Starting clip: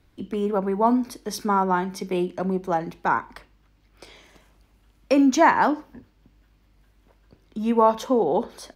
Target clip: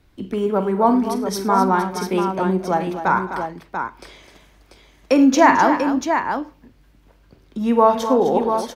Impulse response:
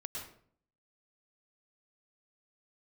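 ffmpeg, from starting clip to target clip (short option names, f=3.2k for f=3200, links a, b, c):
-af "aecho=1:1:47|81|105|216|256|689:0.251|0.112|0.106|0.106|0.299|0.447,volume=3.5dB"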